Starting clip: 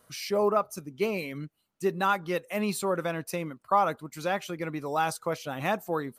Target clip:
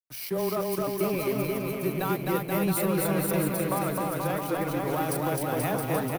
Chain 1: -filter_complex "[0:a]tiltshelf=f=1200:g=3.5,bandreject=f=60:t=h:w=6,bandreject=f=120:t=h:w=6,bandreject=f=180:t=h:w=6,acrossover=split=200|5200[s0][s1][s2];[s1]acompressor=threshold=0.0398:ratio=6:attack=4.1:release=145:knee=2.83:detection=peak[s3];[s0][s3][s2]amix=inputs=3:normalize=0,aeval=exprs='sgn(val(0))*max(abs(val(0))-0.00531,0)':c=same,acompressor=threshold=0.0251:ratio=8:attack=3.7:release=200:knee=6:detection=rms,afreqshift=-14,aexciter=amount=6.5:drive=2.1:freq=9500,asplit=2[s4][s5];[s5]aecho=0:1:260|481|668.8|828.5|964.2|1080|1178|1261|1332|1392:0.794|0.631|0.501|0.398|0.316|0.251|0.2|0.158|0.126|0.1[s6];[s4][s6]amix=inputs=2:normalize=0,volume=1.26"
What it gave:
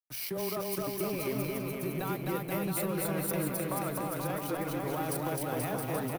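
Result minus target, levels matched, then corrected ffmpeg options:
compression: peak gain reduction +8.5 dB
-filter_complex "[0:a]tiltshelf=f=1200:g=3.5,bandreject=f=60:t=h:w=6,bandreject=f=120:t=h:w=6,bandreject=f=180:t=h:w=6,acrossover=split=200|5200[s0][s1][s2];[s1]acompressor=threshold=0.0398:ratio=6:attack=4.1:release=145:knee=2.83:detection=peak[s3];[s0][s3][s2]amix=inputs=3:normalize=0,aeval=exprs='sgn(val(0))*max(abs(val(0))-0.00531,0)':c=same,afreqshift=-14,aexciter=amount=6.5:drive=2.1:freq=9500,asplit=2[s4][s5];[s5]aecho=0:1:260|481|668.8|828.5|964.2|1080|1178|1261|1332|1392:0.794|0.631|0.501|0.398|0.316|0.251|0.2|0.158|0.126|0.1[s6];[s4][s6]amix=inputs=2:normalize=0,volume=1.26"

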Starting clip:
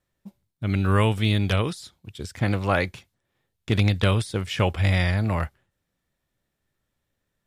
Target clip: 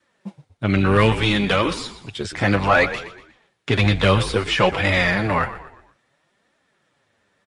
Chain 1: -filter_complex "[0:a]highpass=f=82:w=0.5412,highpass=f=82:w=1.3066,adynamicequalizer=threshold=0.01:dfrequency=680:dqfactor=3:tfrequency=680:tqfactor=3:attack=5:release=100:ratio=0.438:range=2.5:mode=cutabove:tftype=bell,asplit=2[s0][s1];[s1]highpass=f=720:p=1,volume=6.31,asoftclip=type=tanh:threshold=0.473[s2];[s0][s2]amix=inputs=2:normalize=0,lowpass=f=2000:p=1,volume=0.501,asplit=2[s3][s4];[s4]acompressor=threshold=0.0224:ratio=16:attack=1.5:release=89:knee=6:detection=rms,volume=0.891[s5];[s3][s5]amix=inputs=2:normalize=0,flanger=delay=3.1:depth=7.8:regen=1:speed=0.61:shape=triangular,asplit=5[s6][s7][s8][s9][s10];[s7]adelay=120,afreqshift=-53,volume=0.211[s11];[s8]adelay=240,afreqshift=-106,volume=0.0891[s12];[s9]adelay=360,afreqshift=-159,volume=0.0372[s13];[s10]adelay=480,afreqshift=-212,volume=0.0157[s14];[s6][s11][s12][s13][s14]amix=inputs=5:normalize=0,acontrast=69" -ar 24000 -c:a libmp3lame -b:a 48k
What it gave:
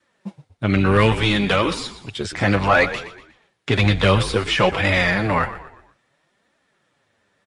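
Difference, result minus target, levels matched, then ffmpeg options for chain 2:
compression: peak gain reduction -6 dB
-filter_complex "[0:a]highpass=f=82:w=0.5412,highpass=f=82:w=1.3066,adynamicequalizer=threshold=0.01:dfrequency=680:dqfactor=3:tfrequency=680:tqfactor=3:attack=5:release=100:ratio=0.438:range=2.5:mode=cutabove:tftype=bell,asplit=2[s0][s1];[s1]highpass=f=720:p=1,volume=6.31,asoftclip=type=tanh:threshold=0.473[s2];[s0][s2]amix=inputs=2:normalize=0,lowpass=f=2000:p=1,volume=0.501,asplit=2[s3][s4];[s4]acompressor=threshold=0.0106:ratio=16:attack=1.5:release=89:knee=6:detection=rms,volume=0.891[s5];[s3][s5]amix=inputs=2:normalize=0,flanger=delay=3.1:depth=7.8:regen=1:speed=0.61:shape=triangular,asplit=5[s6][s7][s8][s9][s10];[s7]adelay=120,afreqshift=-53,volume=0.211[s11];[s8]adelay=240,afreqshift=-106,volume=0.0891[s12];[s9]adelay=360,afreqshift=-159,volume=0.0372[s13];[s10]adelay=480,afreqshift=-212,volume=0.0157[s14];[s6][s11][s12][s13][s14]amix=inputs=5:normalize=0,acontrast=69" -ar 24000 -c:a libmp3lame -b:a 48k

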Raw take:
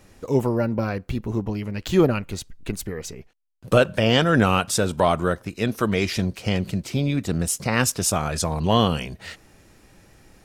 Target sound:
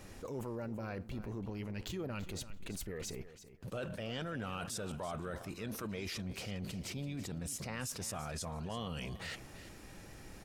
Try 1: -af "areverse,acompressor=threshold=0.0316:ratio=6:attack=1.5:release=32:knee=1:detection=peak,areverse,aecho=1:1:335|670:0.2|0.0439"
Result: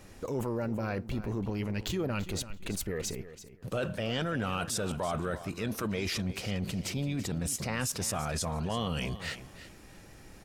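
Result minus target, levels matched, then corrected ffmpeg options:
compression: peak gain reduction -8.5 dB
-af "areverse,acompressor=threshold=0.01:ratio=6:attack=1.5:release=32:knee=1:detection=peak,areverse,aecho=1:1:335|670:0.2|0.0439"

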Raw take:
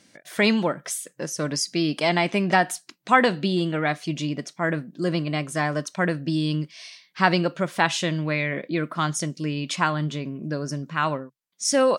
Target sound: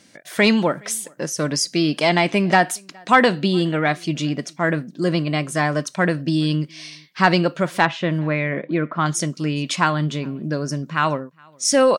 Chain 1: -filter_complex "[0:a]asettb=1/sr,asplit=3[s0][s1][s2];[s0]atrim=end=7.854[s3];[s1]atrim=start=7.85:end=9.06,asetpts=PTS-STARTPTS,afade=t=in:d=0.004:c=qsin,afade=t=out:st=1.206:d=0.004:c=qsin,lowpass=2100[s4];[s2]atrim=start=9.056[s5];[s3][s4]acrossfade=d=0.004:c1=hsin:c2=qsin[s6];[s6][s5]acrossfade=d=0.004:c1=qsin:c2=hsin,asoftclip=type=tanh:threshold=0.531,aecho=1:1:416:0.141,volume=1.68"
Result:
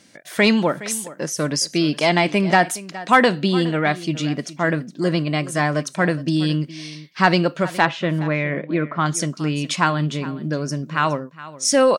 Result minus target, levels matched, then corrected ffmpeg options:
echo-to-direct +12 dB
-filter_complex "[0:a]asettb=1/sr,asplit=3[s0][s1][s2];[s0]atrim=end=7.854[s3];[s1]atrim=start=7.85:end=9.06,asetpts=PTS-STARTPTS,afade=t=in:d=0.004:c=qsin,afade=t=out:st=1.206:d=0.004:c=qsin,lowpass=2100[s4];[s2]atrim=start=9.056[s5];[s3][s4]acrossfade=d=0.004:c1=hsin:c2=qsin[s6];[s6][s5]acrossfade=d=0.004:c1=qsin:c2=hsin,asoftclip=type=tanh:threshold=0.531,aecho=1:1:416:0.0355,volume=1.68"

